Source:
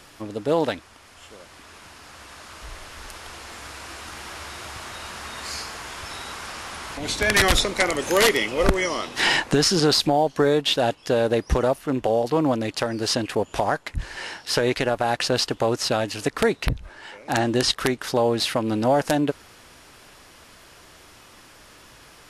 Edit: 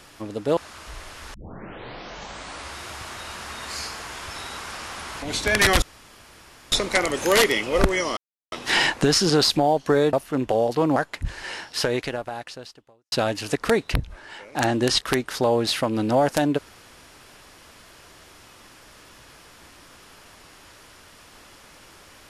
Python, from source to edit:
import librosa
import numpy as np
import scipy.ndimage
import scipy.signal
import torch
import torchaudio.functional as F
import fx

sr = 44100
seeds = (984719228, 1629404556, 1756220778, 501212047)

y = fx.edit(x, sr, fx.cut(start_s=0.57, length_s=1.75),
    fx.tape_start(start_s=3.09, length_s=1.44),
    fx.insert_room_tone(at_s=7.57, length_s=0.9),
    fx.insert_silence(at_s=9.02, length_s=0.35),
    fx.cut(start_s=10.63, length_s=1.05),
    fx.cut(start_s=12.51, length_s=1.18),
    fx.fade_out_span(start_s=14.44, length_s=1.41, curve='qua'), tone=tone)